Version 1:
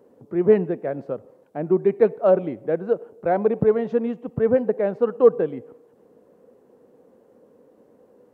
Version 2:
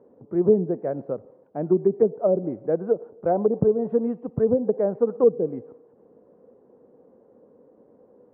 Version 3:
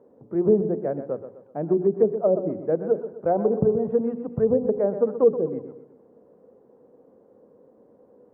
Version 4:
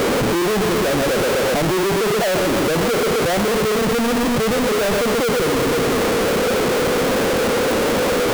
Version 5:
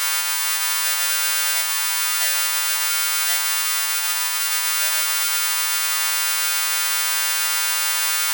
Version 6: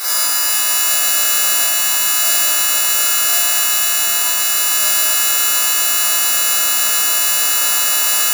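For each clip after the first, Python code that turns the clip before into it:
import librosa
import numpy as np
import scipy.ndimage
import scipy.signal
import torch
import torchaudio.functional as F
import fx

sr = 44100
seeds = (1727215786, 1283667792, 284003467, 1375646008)

y1 = fx.env_lowpass_down(x, sr, base_hz=450.0, full_db=-14.0)
y1 = scipy.signal.sosfilt(scipy.signal.butter(2, 1100.0, 'lowpass', fs=sr, output='sos'), y1)
y2 = fx.hum_notches(y1, sr, base_hz=60, count=7)
y2 = fx.echo_feedback(y2, sr, ms=126, feedback_pct=42, wet_db=-11.0)
y3 = np.sign(y2) * np.sqrt(np.mean(np.square(y2)))
y3 = y3 * 10.0 ** (7.0 / 20.0)
y4 = fx.freq_snap(y3, sr, grid_st=2)
y4 = scipy.signal.sosfilt(scipy.signal.bessel(6, 1400.0, 'highpass', norm='mag', fs=sr, output='sos'), y4)
y4 = y4 * 10.0 ** (-2.0 / 20.0)
y5 = fx.bit_reversed(y4, sr, seeds[0], block=16)
y5 = fx.echo_stepped(y5, sr, ms=223, hz=2500.0, octaves=0.7, feedback_pct=70, wet_db=-4)
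y5 = fx.rev_schroeder(y5, sr, rt60_s=1.0, comb_ms=33, drr_db=-7.5)
y5 = y5 * 10.0 ** (-2.5 / 20.0)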